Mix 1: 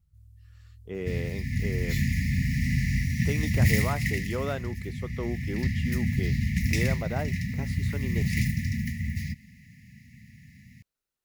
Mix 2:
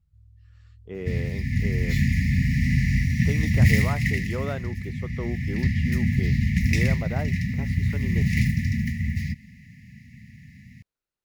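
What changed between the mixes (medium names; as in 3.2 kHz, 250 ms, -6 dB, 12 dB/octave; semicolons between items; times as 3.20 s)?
first sound: add distance through air 53 m; second sound +4.5 dB; master: add treble shelf 5.7 kHz -9.5 dB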